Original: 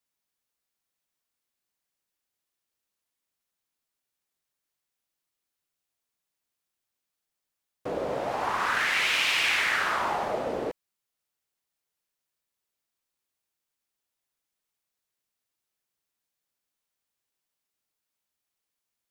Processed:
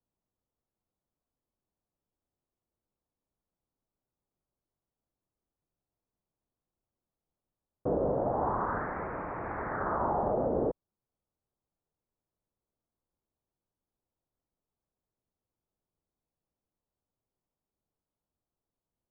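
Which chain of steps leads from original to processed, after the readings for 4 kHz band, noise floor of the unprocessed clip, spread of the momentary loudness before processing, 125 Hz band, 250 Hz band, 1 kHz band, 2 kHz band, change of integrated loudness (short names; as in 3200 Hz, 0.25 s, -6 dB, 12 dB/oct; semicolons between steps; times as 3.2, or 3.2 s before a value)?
under -40 dB, under -85 dBFS, 12 LU, +7.5 dB, +4.5 dB, -3.0 dB, -17.5 dB, -6.0 dB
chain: Gaussian blur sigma 9 samples; low shelf 140 Hz +8 dB; limiter -26 dBFS, peak gain reduction 4.5 dB; gain +5 dB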